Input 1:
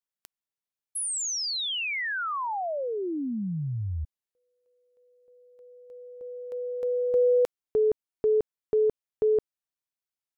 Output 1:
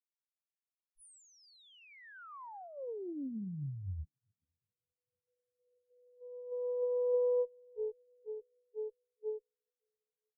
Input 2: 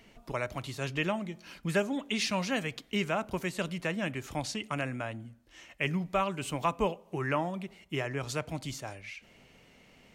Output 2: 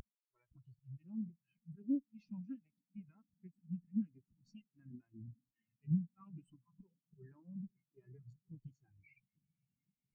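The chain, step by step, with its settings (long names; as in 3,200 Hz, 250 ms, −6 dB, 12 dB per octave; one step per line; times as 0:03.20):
volume swells 236 ms
reversed playback
upward compression, threshold −43 dBFS
reversed playback
parametric band 600 Hz −11.5 dB 0.63 octaves
downward compressor 20 to 1, threshold −41 dBFS
high-shelf EQ 8,400 Hz +11 dB
on a send: feedback delay with all-pass diffusion 495 ms, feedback 79%, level −11.5 dB
on the sum: harmonic generator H 8 −16 dB, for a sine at −26.5 dBFS
every bin expanded away from the loudest bin 4 to 1
level +3.5 dB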